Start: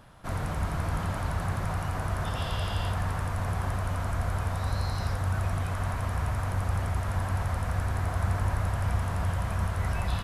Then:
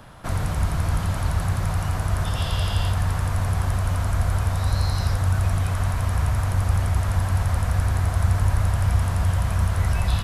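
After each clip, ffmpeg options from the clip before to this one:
-filter_complex "[0:a]acrossover=split=140|3000[a][b][c];[b]acompressor=threshold=-39dB:ratio=6[d];[a][d][c]amix=inputs=3:normalize=0,volume=8.5dB"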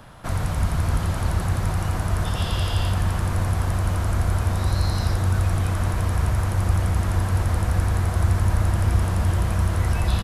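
-filter_complex "[0:a]asplit=8[a][b][c][d][e][f][g][h];[b]adelay=146,afreqshift=-140,volume=-14dB[i];[c]adelay=292,afreqshift=-280,volume=-18dB[j];[d]adelay=438,afreqshift=-420,volume=-22dB[k];[e]adelay=584,afreqshift=-560,volume=-26dB[l];[f]adelay=730,afreqshift=-700,volume=-30.1dB[m];[g]adelay=876,afreqshift=-840,volume=-34.1dB[n];[h]adelay=1022,afreqshift=-980,volume=-38.1dB[o];[a][i][j][k][l][m][n][o]amix=inputs=8:normalize=0"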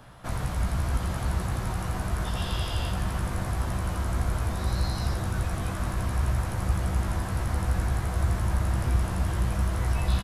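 -filter_complex "[0:a]asplit=2[a][b];[b]adelay=16,volume=-5dB[c];[a][c]amix=inputs=2:normalize=0,volume=-5.5dB"

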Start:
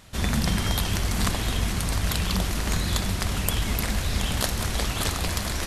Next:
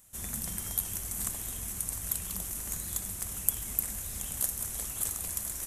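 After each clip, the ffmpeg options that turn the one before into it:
-af "aexciter=amount=12.2:drive=2.6:freq=6.6k,volume=-18dB"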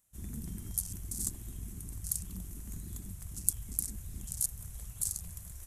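-af "afwtdn=0.0141,volume=1.5dB"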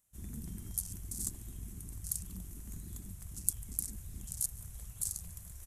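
-af "aecho=1:1:144:0.0668,volume=-2.5dB"

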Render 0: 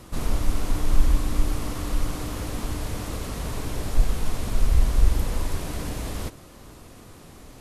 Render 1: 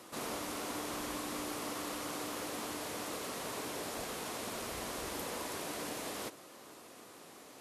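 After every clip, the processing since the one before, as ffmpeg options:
-af "highpass=340,volume=-3.5dB"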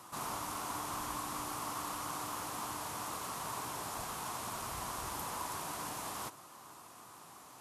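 -af "equalizer=f=125:t=o:w=1:g=4,equalizer=f=250:t=o:w=1:g=-6,equalizer=f=500:t=o:w=1:g=-11,equalizer=f=1k:t=o:w=1:g=8,equalizer=f=2k:t=o:w=1:g=-6,equalizer=f=4k:t=o:w=1:g=-4,volume=1.5dB"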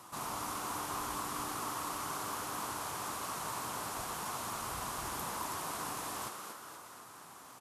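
-filter_complex "[0:a]asplit=8[a][b][c][d][e][f][g][h];[b]adelay=236,afreqshift=99,volume=-6dB[i];[c]adelay=472,afreqshift=198,volume=-11.5dB[j];[d]adelay=708,afreqshift=297,volume=-17dB[k];[e]adelay=944,afreqshift=396,volume=-22.5dB[l];[f]adelay=1180,afreqshift=495,volume=-28.1dB[m];[g]adelay=1416,afreqshift=594,volume=-33.6dB[n];[h]adelay=1652,afreqshift=693,volume=-39.1dB[o];[a][i][j][k][l][m][n][o]amix=inputs=8:normalize=0"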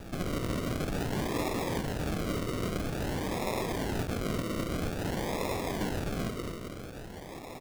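-filter_complex "[0:a]asplit=2[a][b];[b]alimiter=level_in=12.5dB:limit=-24dB:level=0:latency=1,volume=-12.5dB,volume=-1dB[c];[a][c]amix=inputs=2:normalize=0,acrusher=samples=41:mix=1:aa=0.000001:lfo=1:lforange=24.6:lforate=0.5,volume=4dB"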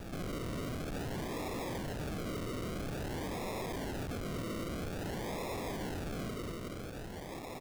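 -af "asoftclip=type=tanh:threshold=-37dB,volume=1dB"

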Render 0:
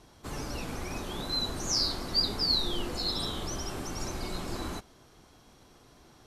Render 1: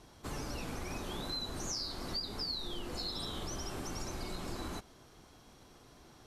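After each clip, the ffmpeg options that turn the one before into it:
-af "acompressor=threshold=-35dB:ratio=6,volume=-1dB"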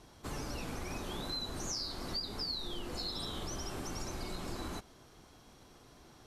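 -af anull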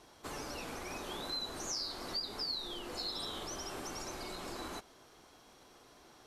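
-af "bass=f=250:g=-11,treble=f=4k:g=-1,volume=1dB"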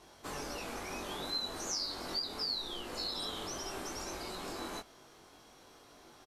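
-filter_complex "[0:a]asplit=2[a][b];[b]adelay=21,volume=-3dB[c];[a][c]amix=inputs=2:normalize=0"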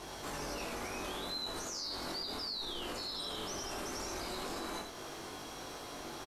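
-af "acompressor=threshold=-47dB:ratio=3,alimiter=level_in=20.5dB:limit=-24dB:level=0:latency=1:release=29,volume=-20.5dB,aecho=1:1:81:0.562,volume=11.5dB"

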